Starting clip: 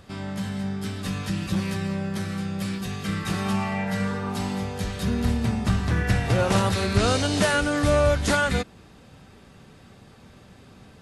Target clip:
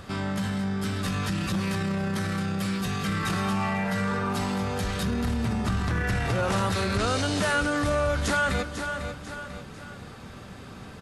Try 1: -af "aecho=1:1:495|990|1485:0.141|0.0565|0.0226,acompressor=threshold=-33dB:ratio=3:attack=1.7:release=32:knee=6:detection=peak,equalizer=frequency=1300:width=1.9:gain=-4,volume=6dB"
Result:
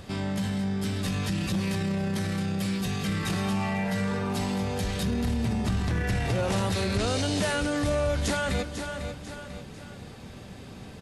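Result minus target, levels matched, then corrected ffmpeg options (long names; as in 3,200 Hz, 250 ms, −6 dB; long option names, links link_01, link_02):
1,000 Hz band −3.5 dB
-af "aecho=1:1:495|990|1485:0.141|0.0565|0.0226,acompressor=threshold=-33dB:ratio=3:attack=1.7:release=32:knee=6:detection=peak,equalizer=frequency=1300:width=1.9:gain=4.5,volume=6dB"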